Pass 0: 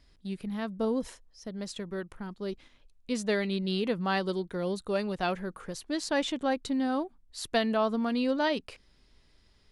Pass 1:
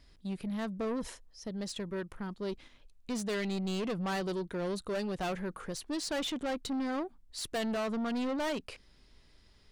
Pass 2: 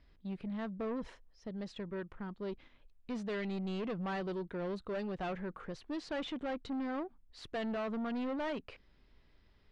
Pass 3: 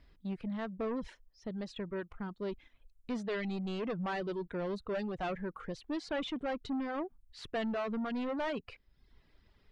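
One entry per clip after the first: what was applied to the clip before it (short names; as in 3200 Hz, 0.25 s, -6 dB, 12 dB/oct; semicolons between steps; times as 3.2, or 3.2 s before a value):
soft clip -32 dBFS, distortion -8 dB; gain +1.5 dB
LPF 2900 Hz 12 dB/oct; gain -3.5 dB
reverb removal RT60 0.75 s; gain +3 dB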